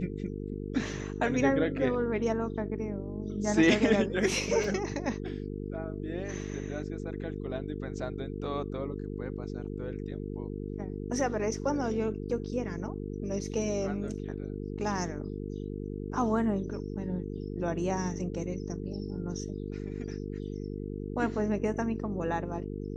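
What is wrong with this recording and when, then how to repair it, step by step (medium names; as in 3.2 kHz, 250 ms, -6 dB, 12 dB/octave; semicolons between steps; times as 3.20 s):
buzz 50 Hz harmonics 9 -37 dBFS
4.64 s: dropout 2.2 ms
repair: de-hum 50 Hz, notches 9; interpolate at 4.64 s, 2.2 ms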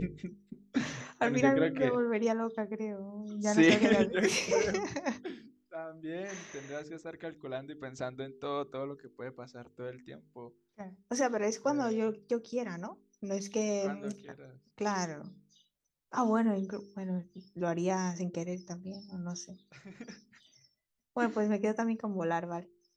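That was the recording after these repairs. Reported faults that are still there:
nothing left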